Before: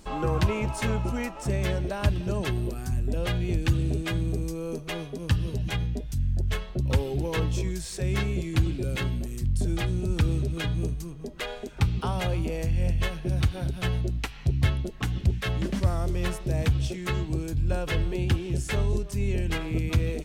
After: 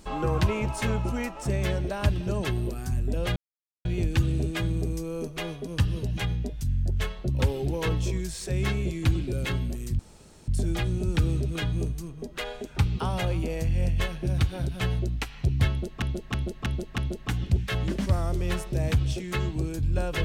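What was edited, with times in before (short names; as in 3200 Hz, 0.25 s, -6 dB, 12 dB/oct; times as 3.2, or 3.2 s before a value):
3.36 insert silence 0.49 s
9.5 insert room tone 0.49 s
14.72–15.04 loop, 5 plays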